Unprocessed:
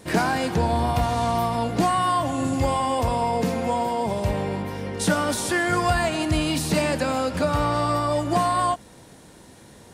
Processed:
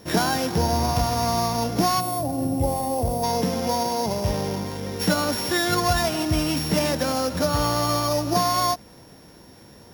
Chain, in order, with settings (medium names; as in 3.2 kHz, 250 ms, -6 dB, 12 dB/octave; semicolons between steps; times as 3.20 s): sorted samples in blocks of 8 samples; time-frequency box 2.00–3.23 s, 890–7600 Hz -13 dB